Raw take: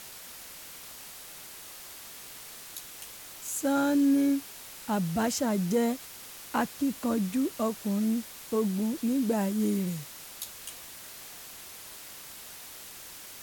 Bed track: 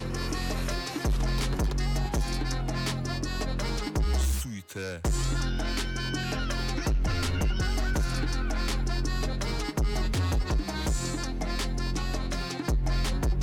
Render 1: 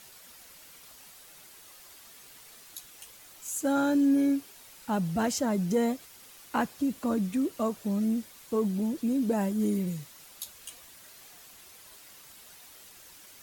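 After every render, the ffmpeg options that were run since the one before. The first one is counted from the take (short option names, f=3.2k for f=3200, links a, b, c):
-af "afftdn=nr=8:nf=-46"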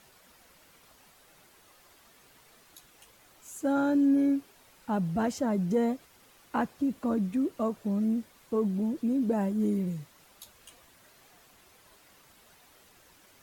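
-af "highshelf=f=2.6k:g=-11"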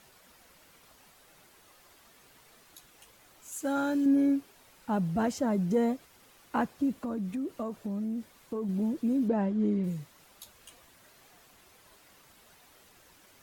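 -filter_complex "[0:a]asettb=1/sr,asplit=3[a][b][c];[a]atrim=end=3.524[d];[b]atrim=start=3.52:end=4.06,asetpts=PTS-STARTPTS,afade=t=in:d=0.004:c=qsin,afade=t=out:st=0.536:d=0.004:c=qsin,tiltshelf=f=1.2k:g=-4.5[e];[c]atrim=start=4.056[f];[d][e]acrossfade=d=0.004:c1=hsin:c2=qsin[g];[g][f]acrossfade=d=0.004:c1=qsin:c2=hsin,asettb=1/sr,asplit=3[h][i][j];[h]atrim=end=7.014[k];[i]atrim=start=7.01:end=8.69,asetpts=PTS-STARTPTS,afade=t=in:d=0.004:c=qsin,afade=t=out:st=1.676:d=0.004:c=qsin,acompressor=threshold=-31dB:ratio=4:attack=3.2:release=140:knee=1:detection=peak[l];[j]atrim=start=8.686[m];[k][l]acrossfade=d=0.004:c1=hsin:c2=qsin[n];[n][m]acrossfade=d=0.004:c1=qsin:c2=hsin,asettb=1/sr,asplit=3[o][p][q];[o]atrim=end=9.284[r];[p]atrim=start=9.28:end=9.84,asetpts=PTS-STARTPTS,afade=t=in:d=0.004:c=qsin,afade=t=out:st=0.556:d=0.004:c=qsin,lowpass=3.8k[s];[q]atrim=start=9.836[t];[r][s]acrossfade=d=0.004:c1=hsin:c2=qsin[u];[u][t]acrossfade=d=0.004:c1=qsin:c2=hsin"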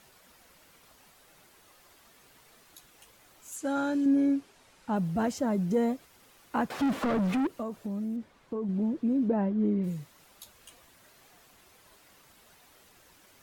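-filter_complex "[0:a]asettb=1/sr,asplit=3[a][b][c];[a]atrim=end=3.564[d];[b]atrim=start=3.56:end=4.96,asetpts=PTS-STARTPTS,afade=t=in:d=0.004:c=qsin,afade=t=out:st=1.396:d=0.004:c=qsin,lowpass=9.2k[e];[c]atrim=start=4.956[f];[d][e]acrossfade=d=0.004:c1=hsin:c2=qsin[g];[g][f]acrossfade=d=0.004:c1=qsin:c2=hsin,asettb=1/sr,asplit=3[h][i][j];[h]atrim=end=6.704[k];[i]atrim=start=6.7:end=7.47,asetpts=PTS-STARTPTS,afade=t=in:d=0.004:c=qsin,afade=t=out:st=0.766:d=0.004:c=qsin,asplit=2[l][m];[m]highpass=f=720:p=1,volume=33dB,asoftclip=type=tanh:threshold=-20dB[n];[l][n]amix=inputs=2:normalize=0,lowpass=f=1.7k:p=1,volume=-6dB[o];[j]atrim=start=7.466[p];[k][o]acrossfade=d=0.004:c1=hsin:c2=qsin[q];[q][p]acrossfade=d=0.004:c1=qsin:c2=hsin,asettb=1/sr,asplit=3[r][s][t];[r]atrim=end=8.164[u];[s]atrim=start=8.16:end=9.82,asetpts=PTS-STARTPTS,afade=t=in:d=0.004:c=qsin,afade=t=out:st=1.656:d=0.004:c=qsin,aemphasis=mode=reproduction:type=75fm[v];[t]atrim=start=9.816[w];[u][v]acrossfade=d=0.004:c1=hsin:c2=qsin[x];[x][w]acrossfade=d=0.004:c1=qsin:c2=hsin"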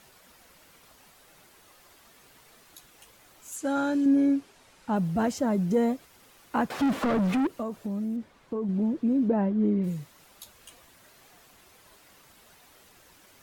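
-af "volume=2.5dB"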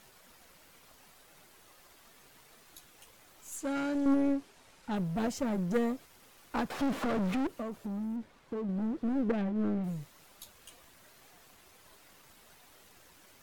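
-af "aeval=exprs='if(lt(val(0),0),0.447*val(0),val(0))':c=same,aeval=exprs='0.188*(cos(1*acos(clip(val(0)/0.188,-1,1)))-cos(1*PI/2))+0.0473*(cos(4*acos(clip(val(0)/0.188,-1,1)))-cos(4*PI/2))':c=same"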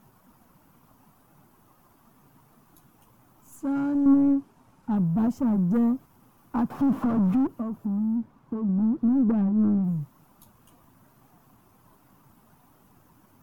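-af "equalizer=f=125:t=o:w=1:g=11,equalizer=f=250:t=o:w=1:g=9,equalizer=f=500:t=o:w=1:g=-6,equalizer=f=1k:t=o:w=1:g=7,equalizer=f=2k:t=o:w=1:g=-9,equalizer=f=4k:t=o:w=1:g=-11,equalizer=f=8k:t=o:w=1:g=-8"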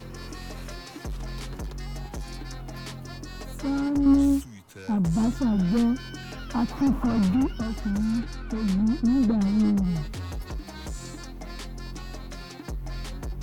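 -filter_complex "[1:a]volume=-7.5dB[a];[0:a][a]amix=inputs=2:normalize=0"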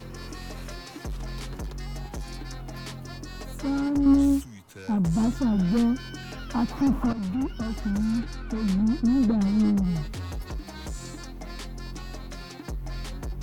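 -filter_complex "[0:a]asplit=2[a][b];[a]atrim=end=7.13,asetpts=PTS-STARTPTS,afade=t=out:st=7.126:d=0.004:c=hsin:silence=0.251189[c];[b]atrim=start=7.13,asetpts=PTS-STARTPTS,afade=t=in:d=0.59:silence=0.251189[d];[c][d]concat=n=2:v=0:a=1"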